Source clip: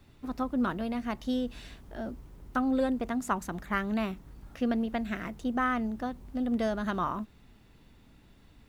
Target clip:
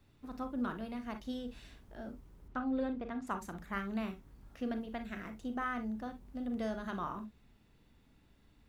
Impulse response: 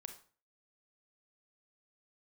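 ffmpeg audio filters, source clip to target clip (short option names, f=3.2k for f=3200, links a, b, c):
-filter_complex "[0:a]asettb=1/sr,asplit=3[a][b][c];[a]atrim=end=2.484[d];[b]atrim=start=2.48:end=3.27,asetpts=PTS-STARTPTS,afade=t=in:d=0.004:c=qsin,afade=t=out:st=0.786:d=0.004:c=qsin,lowpass=3.7k[e];[c]atrim=start=3.266[f];[d][e]acrossfade=d=0.004:c1=hsin:c2=qsin[g];[g][f]acrossfade=d=0.004:c1=qsin:c2=hsin[h];[1:a]atrim=start_sample=2205,atrim=end_sample=3087[i];[h][i]afir=irnorm=-1:irlink=0,volume=-3dB"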